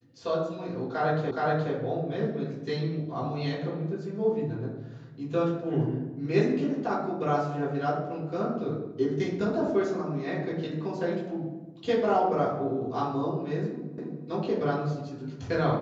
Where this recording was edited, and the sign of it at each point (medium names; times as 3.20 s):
1.31 s: repeat of the last 0.42 s
13.98 s: repeat of the last 0.28 s